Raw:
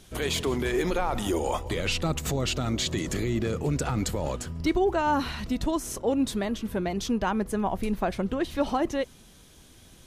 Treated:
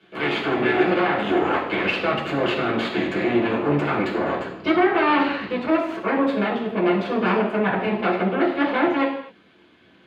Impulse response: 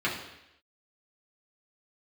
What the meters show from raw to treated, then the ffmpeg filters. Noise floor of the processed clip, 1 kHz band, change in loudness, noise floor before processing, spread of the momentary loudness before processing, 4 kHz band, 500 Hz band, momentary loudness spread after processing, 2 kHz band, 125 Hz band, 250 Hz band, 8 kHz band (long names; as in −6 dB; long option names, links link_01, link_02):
−54 dBFS, +7.5 dB, +6.5 dB, −53 dBFS, 4 LU, +2.0 dB, +7.0 dB, 5 LU, +11.0 dB, −0.5 dB, +6.0 dB, below −15 dB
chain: -filter_complex "[0:a]aeval=exprs='0.266*(cos(1*acos(clip(val(0)/0.266,-1,1)))-cos(1*PI/2))+0.075*(cos(8*acos(clip(val(0)/0.266,-1,1)))-cos(8*PI/2))':channel_layout=same,acrossover=split=210 3400:gain=0.112 1 0.0794[link_01][link_02][link_03];[link_01][link_02][link_03]amix=inputs=3:normalize=0[link_04];[1:a]atrim=start_sample=2205,afade=type=out:start_time=0.33:duration=0.01,atrim=end_sample=14994[link_05];[link_04][link_05]afir=irnorm=-1:irlink=0,volume=-5.5dB"